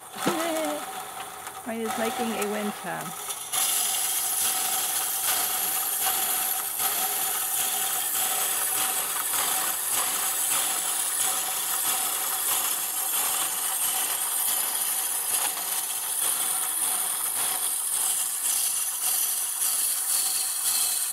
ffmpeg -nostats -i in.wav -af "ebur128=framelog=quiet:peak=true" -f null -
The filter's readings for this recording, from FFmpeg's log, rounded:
Integrated loudness:
  I:         -23.9 LUFS
  Threshold: -34.0 LUFS
Loudness range:
  LRA:         2.3 LU
  Threshold: -43.9 LUFS
  LRA low:   -25.5 LUFS
  LRA high:  -23.1 LUFS
True peak:
  Peak:      -10.5 dBFS